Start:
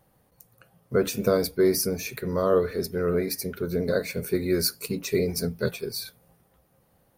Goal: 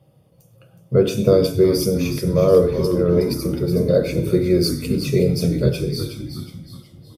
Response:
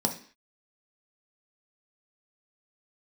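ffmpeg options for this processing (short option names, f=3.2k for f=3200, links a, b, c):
-filter_complex "[0:a]asplit=6[a][b][c][d][e][f];[b]adelay=368,afreqshift=-110,volume=-8dB[g];[c]adelay=736,afreqshift=-220,volume=-14.7dB[h];[d]adelay=1104,afreqshift=-330,volume=-21.5dB[i];[e]adelay=1472,afreqshift=-440,volume=-28.2dB[j];[f]adelay=1840,afreqshift=-550,volume=-35dB[k];[a][g][h][i][j][k]amix=inputs=6:normalize=0[l];[1:a]atrim=start_sample=2205,afade=t=out:st=0.16:d=0.01,atrim=end_sample=7497,asetrate=27342,aresample=44100[m];[l][m]afir=irnorm=-1:irlink=0,volume=-8.5dB"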